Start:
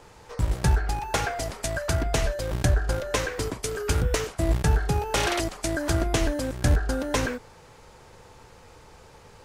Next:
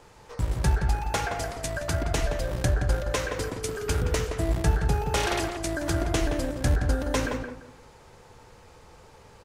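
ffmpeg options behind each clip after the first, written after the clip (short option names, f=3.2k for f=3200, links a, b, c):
-filter_complex "[0:a]asplit=2[a][b];[b]adelay=171,lowpass=f=1.8k:p=1,volume=-4.5dB,asplit=2[c][d];[d]adelay=171,lowpass=f=1.8k:p=1,volume=0.26,asplit=2[e][f];[f]adelay=171,lowpass=f=1.8k:p=1,volume=0.26,asplit=2[g][h];[h]adelay=171,lowpass=f=1.8k:p=1,volume=0.26[i];[a][c][e][g][i]amix=inputs=5:normalize=0,volume=-2.5dB"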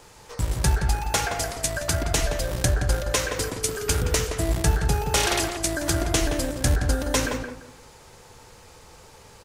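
-af "highshelf=f=3.6k:g=10,volume=1.5dB"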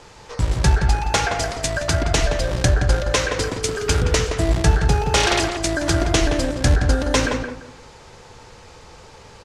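-af "lowpass=6k,volume=5.5dB"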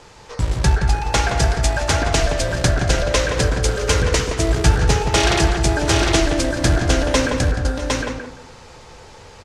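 -af "aecho=1:1:234|649|758:0.119|0.141|0.708"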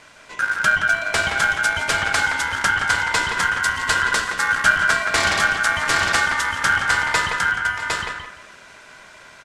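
-af "aeval=exprs='val(0)*sin(2*PI*1500*n/s)':c=same"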